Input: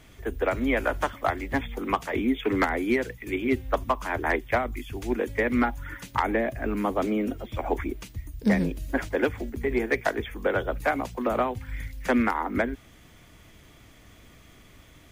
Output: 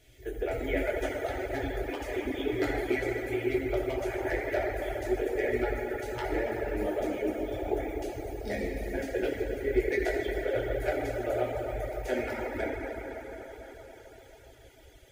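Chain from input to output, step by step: reverberation RT60 5.2 s, pre-delay 4 ms, DRR -7 dB; reverb removal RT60 0.69 s; static phaser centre 450 Hz, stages 4; trim -7 dB

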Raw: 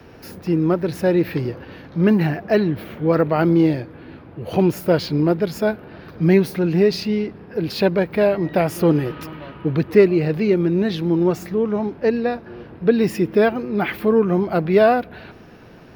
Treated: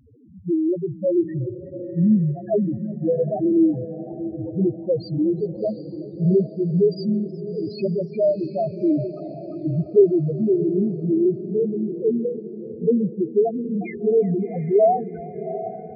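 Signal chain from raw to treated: loudest bins only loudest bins 1; echo that smears into a reverb 741 ms, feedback 44%, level -12 dB; modulated delay 370 ms, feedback 57%, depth 100 cents, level -22.5 dB; trim +4 dB

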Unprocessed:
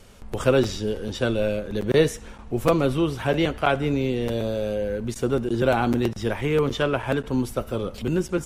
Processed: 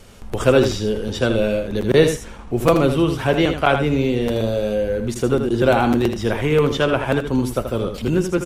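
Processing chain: delay 80 ms -8 dB; trim +4.5 dB

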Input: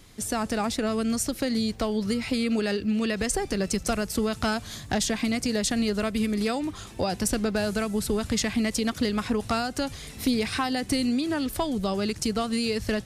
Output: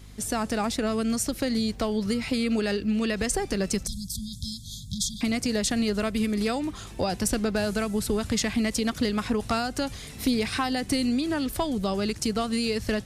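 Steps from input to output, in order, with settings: 3.87–5.21 s: brick-wall FIR band-stop 210–3200 Hz; hum 50 Hz, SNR 20 dB

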